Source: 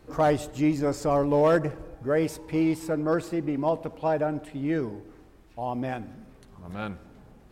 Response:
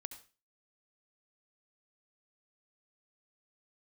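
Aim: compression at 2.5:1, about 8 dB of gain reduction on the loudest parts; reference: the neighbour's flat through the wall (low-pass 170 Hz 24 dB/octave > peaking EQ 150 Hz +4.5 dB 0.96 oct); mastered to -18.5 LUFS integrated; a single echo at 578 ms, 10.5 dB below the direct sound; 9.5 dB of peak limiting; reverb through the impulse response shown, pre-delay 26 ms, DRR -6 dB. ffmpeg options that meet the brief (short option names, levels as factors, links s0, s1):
-filter_complex "[0:a]acompressor=threshold=0.0316:ratio=2.5,alimiter=level_in=1.58:limit=0.0631:level=0:latency=1,volume=0.631,aecho=1:1:578:0.299,asplit=2[s0][s1];[1:a]atrim=start_sample=2205,adelay=26[s2];[s1][s2]afir=irnorm=-1:irlink=0,volume=2.99[s3];[s0][s3]amix=inputs=2:normalize=0,lowpass=f=170:w=0.5412,lowpass=f=170:w=1.3066,equalizer=f=150:t=o:w=0.96:g=4.5,volume=7.94"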